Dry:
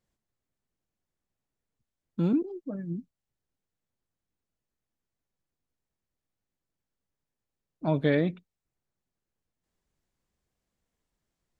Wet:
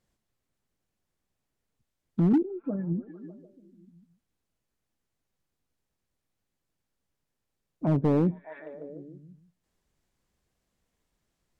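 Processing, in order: repeats whose band climbs or falls 149 ms, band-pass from 3.2 kHz, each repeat -0.7 oct, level -8.5 dB; low-pass that closes with the level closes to 450 Hz, closed at -28.5 dBFS; overload inside the chain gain 21.5 dB; trim +4.5 dB

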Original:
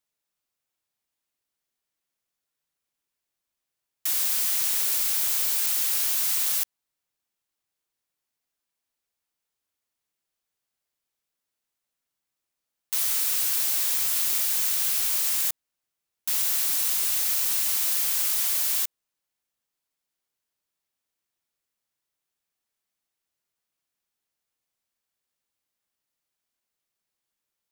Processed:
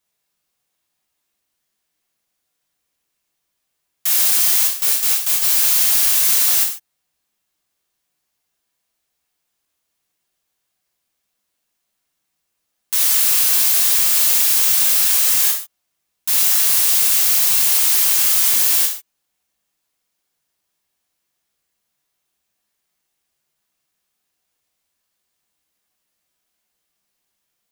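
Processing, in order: 4.67–5.42 s: gate with hold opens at -13 dBFS; gated-style reverb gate 170 ms falling, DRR -1.5 dB; trim +6 dB

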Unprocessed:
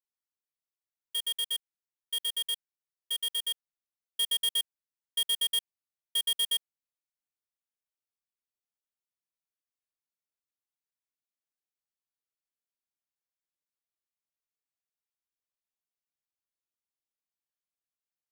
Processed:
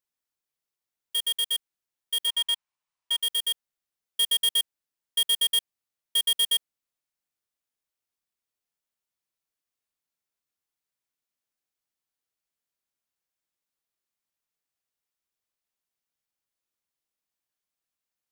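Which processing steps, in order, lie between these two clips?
2.27–3.21 s: fifteen-band graphic EQ 400 Hz -6 dB, 1 kHz +10 dB, 2.5 kHz +4 dB, 16 kHz -12 dB; trim +5 dB

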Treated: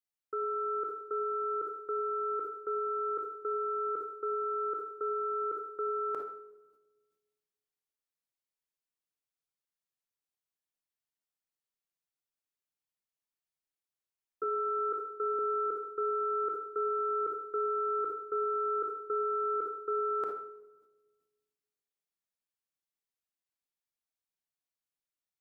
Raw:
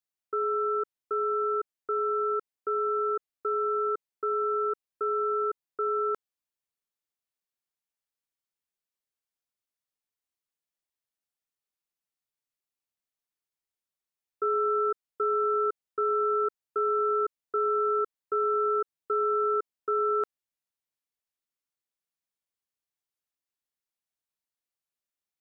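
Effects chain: 14.43–15.39 s: high-pass 280 Hz 12 dB/octave; simulated room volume 1100 m³, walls mixed, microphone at 0.55 m; decay stretcher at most 56 dB/s; trim -5 dB

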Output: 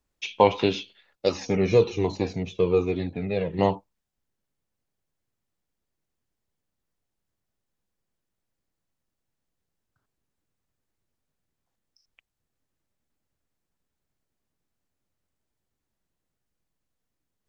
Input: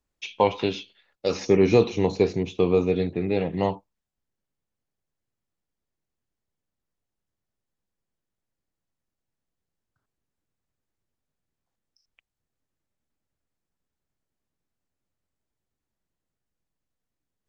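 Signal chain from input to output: 1.29–3.59 s: Shepard-style flanger falling 1.2 Hz; trim +2.5 dB

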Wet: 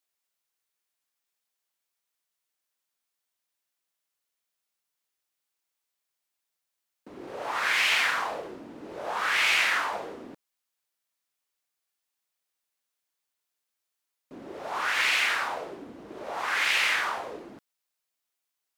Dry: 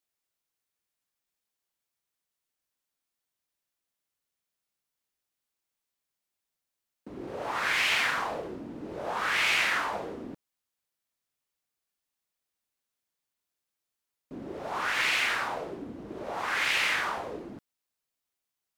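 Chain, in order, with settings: bass shelf 300 Hz -12 dB; trim +2.5 dB

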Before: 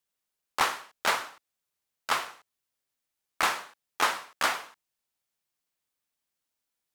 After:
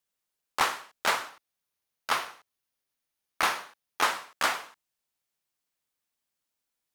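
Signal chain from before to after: 1.29–4.03 s: band-stop 7.6 kHz, Q 8.3

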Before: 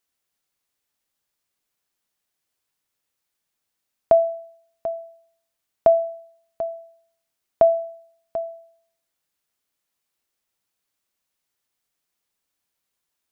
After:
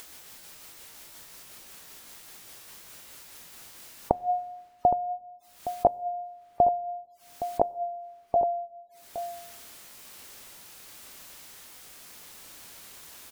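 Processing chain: pitch bend over the whole clip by +2 st ending unshifted; in parallel at -1 dB: upward compressor, threshold -20 dBFS; on the sum: spectral gate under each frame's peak -25 dB strong; inverted gate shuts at -7 dBFS, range -28 dB; echo from a far wall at 140 m, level -11 dB; on a send at -22.5 dB: reverberation RT60 1.3 s, pre-delay 6 ms

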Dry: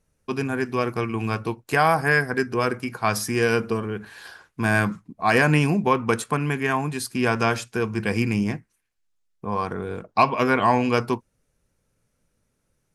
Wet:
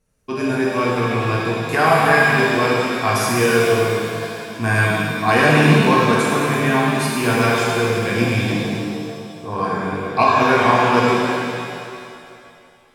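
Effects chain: pitch-shifted reverb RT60 2.3 s, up +7 st, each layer -8 dB, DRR -5.5 dB; trim -1 dB

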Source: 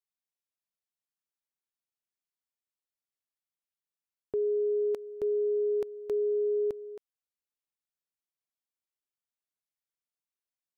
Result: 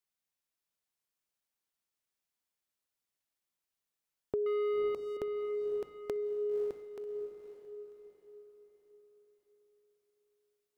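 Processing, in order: 4.46–5.17 s: waveshaping leveller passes 2; compression, threshold -35 dBFS, peak gain reduction 8 dB; echo that smears into a reverb 542 ms, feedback 44%, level -7 dB; trim +3.5 dB

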